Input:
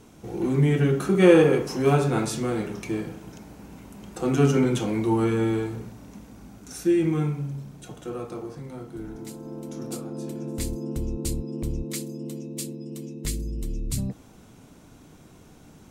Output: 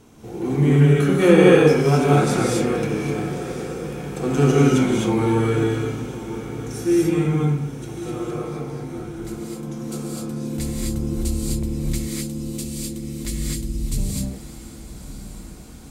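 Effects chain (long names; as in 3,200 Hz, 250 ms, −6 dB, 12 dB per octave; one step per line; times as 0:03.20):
feedback delay with all-pass diffusion 1,114 ms, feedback 56%, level −13 dB
reverb whose tail is shaped and stops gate 280 ms rising, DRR −4 dB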